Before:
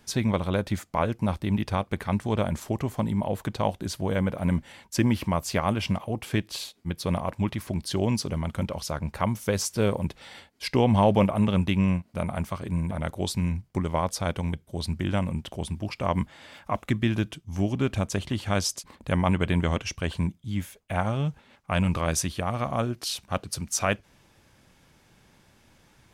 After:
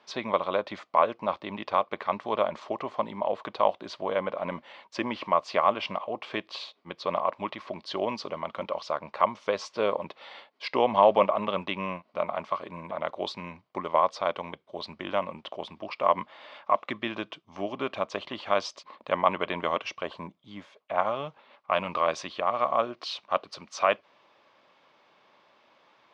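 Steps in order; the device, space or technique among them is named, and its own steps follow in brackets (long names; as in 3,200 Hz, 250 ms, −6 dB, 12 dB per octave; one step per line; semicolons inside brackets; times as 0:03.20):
0:20.03–0:20.98: dynamic equaliser 2,700 Hz, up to −7 dB, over −51 dBFS, Q 0.84
phone earpiece (loudspeaker in its box 440–4,200 Hz, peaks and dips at 600 Hz +6 dB, 1,100 Hz +9 dB, 1,600 Hz −4 dB)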